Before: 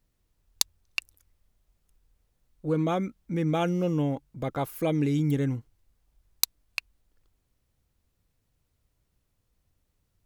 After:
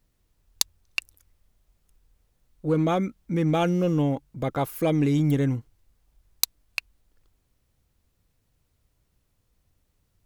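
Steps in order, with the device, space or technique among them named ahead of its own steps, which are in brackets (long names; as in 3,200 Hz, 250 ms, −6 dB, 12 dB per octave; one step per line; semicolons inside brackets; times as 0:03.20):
parallel distortion (in parallel at −5.5 dB: hard clipping −21.5 dBFS, distortion −12 dB)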